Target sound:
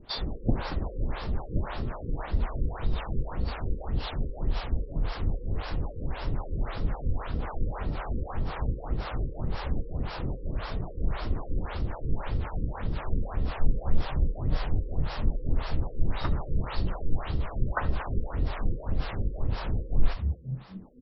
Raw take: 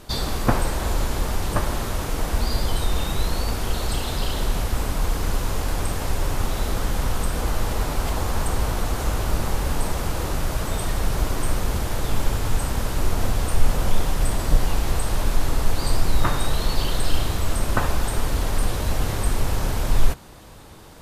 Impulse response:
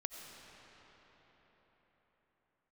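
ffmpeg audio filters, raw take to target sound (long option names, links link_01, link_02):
-filter_complex "[0:a]asplit=6[link_01][link_02][link_03][link_04][link_05][link_06];[link_02]adelay=228,afreqshift=59,volume=-12dB[link_07];[link_03]adelay=456,afreqshift=118,volume=-18.9dB[link_08];[link_04]adelay=684,afreqshift=177,volume=-25.9dB[link_09];[link_05]adelay=912,afreqshift=236,volume=-32.8dB[link_10];[link_06]adelay=1140,afreqshift=295,volume=-39.7dB[link_11];[link_01][link_07][link_08][link_09][link_10][link_11]amix=inputs=6:normalize=0,acrossover=split=480[link_12][link_13];[link_12]aeval=exprs='val(0)*(1-1/2+1/2*cos(2*PI*3.8*n/s))':channel_layout=same[link_14];[link_13]aeval=exprs='val(0)*(1-1/2-1/2*cos(2*PI*3.8*n/s))':channel_layout=same[link_15];[link_14][link_15]amix=inputs=2:normalize=0[link_16];[1:a]atrim=start_sample=2205,atrim=end_sample=3969[link_17];[link_16][link_17]afir=irnorm=-1:irlink=0,afftfilt=real='re*lt(b*sr/1024,520*pow(5700/520,0.5+0.5*sin(2*PI*1.8*pts/sr)))':imag='im*lt(b*sr/1024,520*pow(5700/520,0.5+0.5*sin(2*PI*1.8*pts/sr)))':win_size=1024:overlap=0.75"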